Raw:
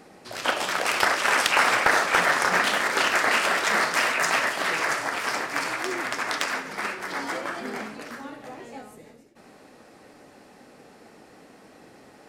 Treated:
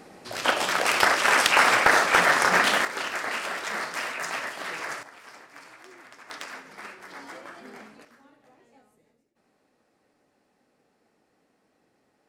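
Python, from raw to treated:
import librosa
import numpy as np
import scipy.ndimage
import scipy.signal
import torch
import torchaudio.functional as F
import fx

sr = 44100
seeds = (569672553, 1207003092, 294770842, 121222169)

y = fx.gain(x, sr, db=fx.steps((0.0, 1.5), (2.85, -8.5), (5.03, -20.0), (6.3, -11.5), (8.05, -18.5)))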